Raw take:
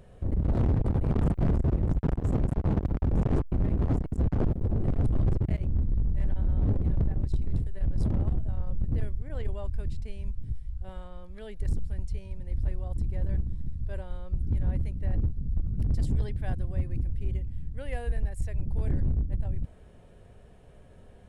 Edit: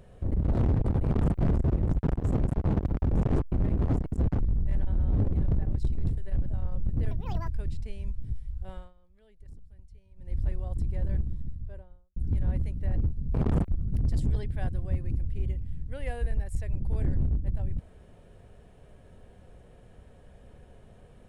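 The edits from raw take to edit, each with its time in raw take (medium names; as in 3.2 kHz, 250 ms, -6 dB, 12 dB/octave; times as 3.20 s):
1.04–1.38 s: copy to 15.54 s
4.40–5.89 s: delete
7.95–8.41 s: delete
9.06–9.68 s: speed 166%
10.94–12.54 s: dip -19 dB, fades 0.19 s
13.40–14.36 s: studio fade out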